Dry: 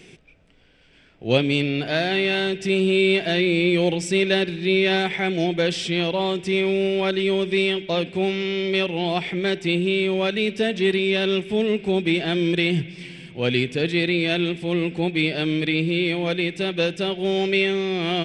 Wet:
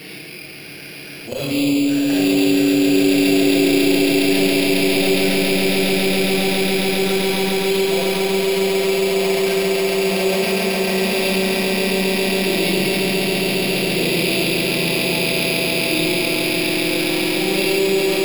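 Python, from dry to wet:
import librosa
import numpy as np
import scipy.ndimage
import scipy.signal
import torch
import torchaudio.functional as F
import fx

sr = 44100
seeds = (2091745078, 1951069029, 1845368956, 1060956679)

p1 = fx.reverse_delay_fb(x, sr, ms=107, feedback_pct=66, wet_db=-3)
p2 = scipy.signal.sosfilt(scipy.signal.butter(2, 46.0, 'highpass', fs=sr, output='sos'), p1)
p3 = fx.tilt_eq(p2, sr, slope=2.0)
p4 = fx.level_steps(p3, sr, step_db=10)
p5 = fx.auto_swell(p4, sr, attack_ms=201.0)
p6 = 10.0 ** (-16.5 / 20.0) * np.tanh(p5 / 10.0 ** (-16.5 / 20.0))
p7 = fx.env_flanger(p6, sr, rest_ms=7.5, full_db=-22.5)
p8 = fx.air_absorb(p7, sr, metres=140.0)
p9 = p8 + fx.echo_swell(p8, sr, ms=137, loudest=8, wet_db=-5, dry=0)
p10 = fx.rev_schroeder(p9, sr, rt60_s=1.0, comb_ms=28, drr_db=-4.5)
p11 = np.repeat(scipy.signal.resample_poly(p10, 1, 6), 6)[:len(p10)]
p12 = fx.env_flatten(p11, sr, amount_pct=50)
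y = F.gain(torch.from_numpy(p12), -4.0).numpy()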